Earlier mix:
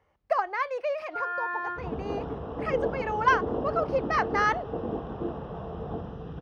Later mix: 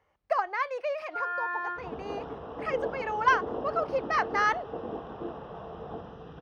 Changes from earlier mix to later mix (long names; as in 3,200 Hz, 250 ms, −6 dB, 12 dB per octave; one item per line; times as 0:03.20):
second sound: add low-shelf EQ 210 Hz −6 dB
master: add low-shelf EQ 450 Hz −5.5 dB